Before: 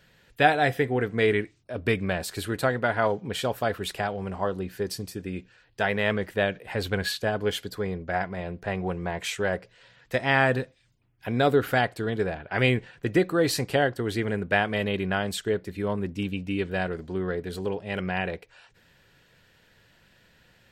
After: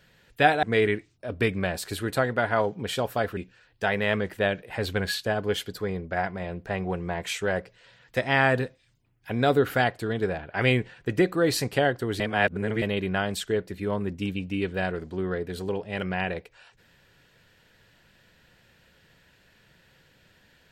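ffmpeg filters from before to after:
-filter_complex "[0:a]asplit=5[a][b][c][d][e];[a]atrim=end=0.632[f];[b]atrim=start=1.088:end=3.832[g];[c]atrim=start=5.338:end=14.172[h];[d]atrim=start=14.168:end=14.792,asetpts=PTS-STARTPTS,areverse[i];[e]atrim=start=14.788[j];[f][g]acrossfade=d=0.004:c1=hsin:c2=hsin[k];[k][h]acrossfade=d=0.004:c1=hsin:c2=hsin[l];[l][i]acrossfade=d=0.004:c1=hsin:c2=hsin[m];[m][j]acrossfade=d=0.004:c1=hsin:c2=hsin"

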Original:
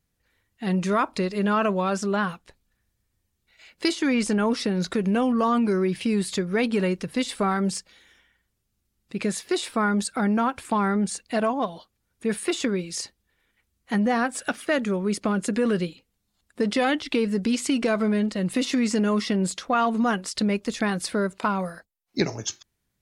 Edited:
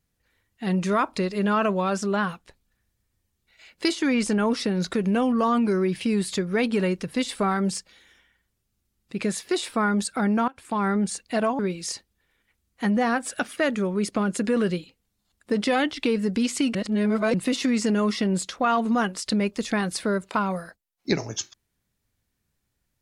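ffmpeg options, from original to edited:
-filter_complex "[0:a]asplit=5[a][b][c][d][e];[a]atrim=end=10.48,asetpts=PTS-STARTPTS,afade=t=out:st=10.476:d=0.004:c=hsin:silence=0.0944061[f];[b]atrim=start=10.48:end=11.592,asetpts=PTS-STARTPTS,afade=t=in:d=0.4:silence=0.0944061[g];[c]atrim=start=12.678:end=17.842[h];[d]atrim=start=17.838:end=18.432,asetpts=PTS-STARTPTS,areverse[i];[e]atrim=start=18.428[j];[f][g]concat=n=2:v=0:a=1[k];[k][h]acrossfade=d=0.004:c1=hsin:c2=hsin[l];[l][i]acrossfade=d=0.004:c1=hsin:c2=hsin[m];[m][j]acrossfade=d=0.004:c1=hsin:c2=hsin"

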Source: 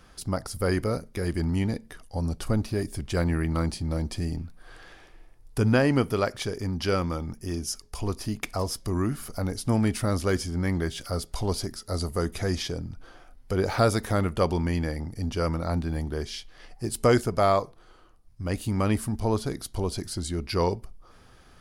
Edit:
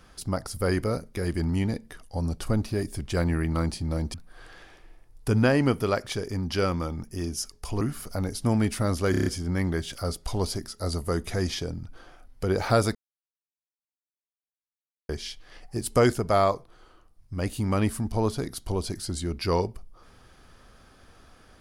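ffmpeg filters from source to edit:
-filter_complex "[0:a]asplit=10[a][b][c][d][e][f][g][h][i][j];[a]atrim=end=4.142[k];[b]atrim=start=4.438:end=8.112[l];[c]atrim=start=9.038:end=10.372[m];[d]atrim=start=10.338:end=10.372[n];[e]atrim=start=10.338:end=10.372[o];[f]atrim=start=10.338:end=10.372[p];[g]atrim=start=10.338:end=10.372[q];[h]atrim=start=10.338:end=14.03,asetpts=PTS-STARTPTS,afade=t=out:st=3.688:d=0.004:c=hsin[r];[i]atrim=start=14.03:end=16.17,asetpts=PTS-STARTPTS,volume=0[s];[j]atrim=start=16.17,asetpts=PTS-STARTPTS,afade=t=in:d=0.004:c=hsin[t];[k][l]acrossfade=d=0.004:c1=hsin:c2=hsin[u];[u][m]acrossfade=d=0.004:c1=hsin:c2=hsin[v];[v][n]acrossfade=d=0.004:c1=hsin:c2=hsin[w];[w][o]acrossfade=d=0.004:c1=hsin:c2=hsin[x];[x][p]acrossfade=d=0.004:c1=hsin:c2=hsin[y];[y][q]acrossfade=d=0.004:c1=hsin:c2=hsin[z];[r][s][t]concat=n=3:v=0:a=1[aa];[z][aa]acrossfade=d=0.004:c1=hsin:c2=hsin"

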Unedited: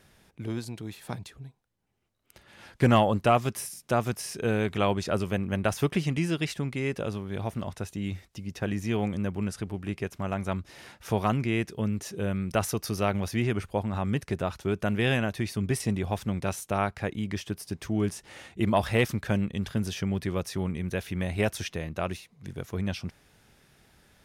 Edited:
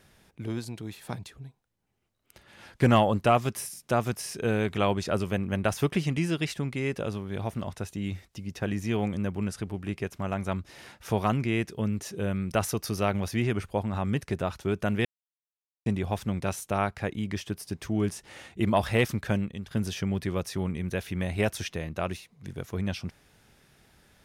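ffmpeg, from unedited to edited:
-filter_complex "[0:a]asplit=4[a][b][c][d];[a]atrim=end=15.05,asetpts=PTS-STARTPTS,afade=t=out:st=15.046:d=0.004:c=hsin[e];[b]atrim=start=15.05:end=15.86,asetpts=PTS-STARTPTS,volume=0[f];[c]atrim=start=15.86:end=19.71,asetpts=PTS-STARTPTS,afade=t=in:d=0.004:c=hsin,afade=t=out:st=3.45:d=0.4:silence=0.251189[g];[d]atrim=start=19.71,asetpts=PTS-STARTPTS,afade=t=in:d=0.004:c=hsin:silence=0.251189[h];[e][f][g][h]concat=n=4:v=0:a=1"

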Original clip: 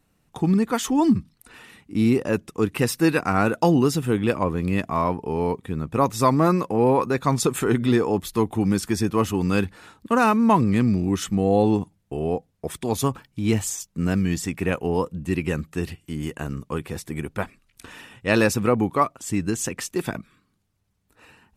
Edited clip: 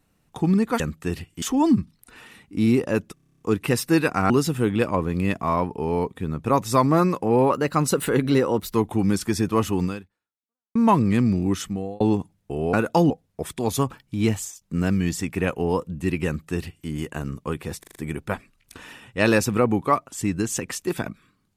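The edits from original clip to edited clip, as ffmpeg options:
-filter_complex "[0:a]asplit=24[a][b][c][d][e][f][g][h][i][j][k][l][m][n][o][p][q][r][s][t][u][v][w][x];[a]atrim=end=0.802[y];[b]atrim=start=15.508:end=16.132[z];[c]atrim=start=0.798:end=2.552[aa];[d]atrim=start=2.518:end=2.552[ab];[e]atrim=start=2.518:end=2.552[ac];[f]atrim=start=2.518:end=2.552[ad];[g]atrim=start=2.518:end=2.552[ae];[h]atrim=start=2.518:end=2.552[af];[i]atrim=start=2.518:end=2.552[ag];[j]atrim=start=2.518:end=2.552[ah];[k]atrim=start=2.518:end=2.552[ai];[l]atrim=start=2.518:end=3.412[aj];[m]atrim=start=3.778:end=6.984[ak];[n]atrim=start=6.98:end=8.36,asetpts=PTS-STARTPTS,asetrate=48951,aresample=44100,atrim=end_sample=54827,asetpts=PTS-STARTPTS[al];[o]atrim=start=8.356:end=10.37,asetpts=PTS-STARTPTS,afade=t=out:st=1.104:d=0.91:c=exp[am];[p]atrim=start=10.37:end=11.62,asetpts=PTS-STARTPTS,afade=t=in:d=0.004:c=hsin,afade=t=out:st=0.75:d=0.5[an];[q]atrim=start=11.62:end=12.352,asetpts=PTS-STARTPTS,afade=t=in:d=0.004:c=hsin[ao];[r]atrim=start=3.408:end=3.782[ap];[s]atrim=start=12.348:end=13.86,asetpts=PTS-STARTPTS,afade=t=out:st=1.172:d=0.34:silence=0.16788[aq];[t]atrim=start=13.86:end=17.082,asetpts=PTS-STARTPTS,afade=t=in:d=0.004:c=hsin:silence=0.16788[ar];[u]atrim=start=17.038:end=17.082[as];[v]atrim=start=17.038:end=17.082[at];[w]atrim=start=17.038:end=17.082[au];[x]atrim=start=17.038[av];[y][z]acrossfade=d=0.004:c1=hsin:c2=hsin[aw];[aw][aa]acrossfade=d=0.004:c1=hsin:c2=hsin[ax];[ax][ab]acrossfade=d=0.004:c1=hsin:c2=hsin[ay];[ay][ac]acrossfade=d=0.004:c1=hsin:c2=hsin[az];[az][ad]acrossfade=d=0.004:c1=hsin:c2=hsin[ba];[ba][ae]acrossfade=d=0.004:c1=hsin:c2=hsin[bb];[bb][af]acrossfade=d=0.004:c1=hsin:c2=hsin[bc];[bc][ag]acrossfade=d=0.004:c1=hsin:c2=hsin[bd];[bd][ah]acrossfade=d=0.004:c1=hsin:c2=hsin[be];[be][ai]acrossfade=d=0.004:c1=hsin:c2=hsin[bf];[bf][aj]acrossfade=d=0.004:c1=hsin:c2=hsin[bg];[bg][ak]acrossfade=d=0.004:c1=hsin:c2=hsin[bh];[bh][al]acrossfade=d=0.004:c1=hsin:c2=hsin[bi];[am][an][ao]concat=n=3:v=0:a=1[bj];[bi][bj]acrossfade=d=0.004:c1=hsin:c2=hsin[bk];[bk][ap]acrossfade=d=0.004:c1=hsin:c2=hsin[bl];[aq][ar]concat=n=2:v=0:a=1[bm];[bl][bm]acrossfade=d=0.004:c1=hsin:c2=hsin[bn];[bn][as]acrossfade=d=0.004:c1=hsin:c2=hsin[bo];[bo][at]acrossfade=d=0.004:c1=hsin:c2=hsin[bp];[bp][au]acrossfade=d=0.004:c1=hsin:c2=hsin[bq];[bq][av]acrossfade=d=0.004:c1=hsin:c2=hsin"

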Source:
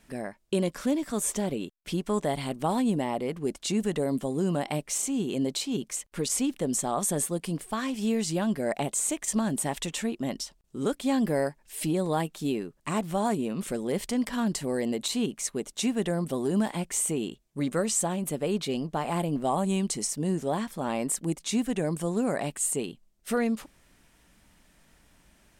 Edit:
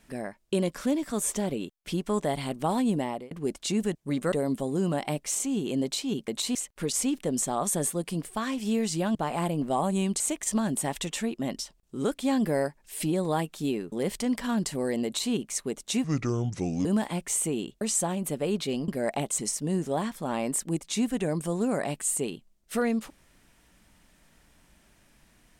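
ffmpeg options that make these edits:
-filter_complex "[0:a]asplit=14[a][b][c][d][e][f][g][h][i][j][k][l][m][n];[a]atrim=end=3.31,asetpts=PTS-STARTPTS,afade=t=out:st=2.94:d=0.37:c=qsin[o];[b]atrim=start=3.31:end=3.952,asetpts=PTS-STARTPTS,afade=t=in:d=0.004:c=hsin[p];[c]atrim=start=17.448:end=17.822[q];[d]atrim=start=3.948:end=5.912[r];[e]atrim=start=14.938:end=15.212[s];[f]atrim=start=5.908:end=8.512[t];[g]atrim=start=18.888:end=19.942[u];[h]atrim=start=9.008:end=12.732[v];[i]atrim=start=13.808:end=15.934[w];[j]atrim=start=15.93:end=16.49,asetpts=PTS-STARTPTS,asetrate=30429,aresample=44100,atrim=end_sample=35791,asetpts=PTS-STARTPTS[x];[k]atrim=start=16.486:end=17.452[y];[l]atrim=start=17.818:end=18.892[z];[m]atrim=start=8.508:end=9.012[aa];[n]atrim=start=19.938[ab];[o][p]concat=n=2:v=0:a=1[ac];[ac][q]acrossfade=d=0.004:c1=hsin:c2=hsin[ad];[ad][r]acrossfade=d=0.004:c1=hsin:c2=hsin[ae];[ae][s]acrossfade=d=0.004:c1=hsin:c2=hsin[af];[af][t]acrossfade=d=0.004:c1=hsin:c2=hsin[ag];[ag][u]acrossfade=d=0.004:c1=hsin:c2=hsin[ah];[ah][v]acrossfade=d=0.004:c1=hsin:c2=hsin[ai];[ai][w]acrossfade=d=0.004:c1=hsin:c2=hsin[aj];[aj][x]acrossfade=d=0.004:c1=hsin:c2=hsin[ak];[ak][y]acrossfade=d=0.004:c1=hsin:c2=hsin[al];[al][z]acrossfade=d=0.004:c1=hsin:c2=hsin[am];[am][aa]acrossfade=d=0.004:c1=hsin:c2=hsin[an];[an][ab]acrossfade=d=0.004:c1=hsin:c2=hsin"

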